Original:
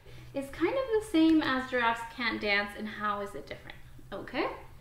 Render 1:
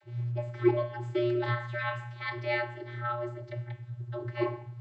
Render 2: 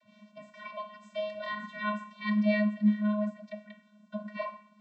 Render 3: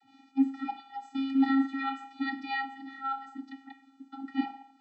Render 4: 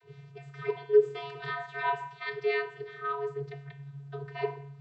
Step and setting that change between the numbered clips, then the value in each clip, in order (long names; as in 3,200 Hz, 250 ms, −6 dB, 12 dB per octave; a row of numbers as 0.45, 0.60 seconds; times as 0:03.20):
channel vocoder, frequency: 120, 210, 270, 140 Hertz